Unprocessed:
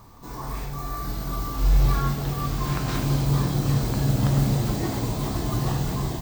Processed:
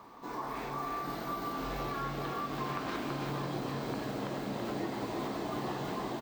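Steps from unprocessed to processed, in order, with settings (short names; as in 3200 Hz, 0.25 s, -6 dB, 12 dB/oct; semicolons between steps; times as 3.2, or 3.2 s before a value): three-band isolator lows -24 dB, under 220 Hz, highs -14 dB, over 3700 Hz; compressor, threshold -35 dBFS, peak gain reduction 10 dB; echo 0.331 s -5 dB; gain +1 dB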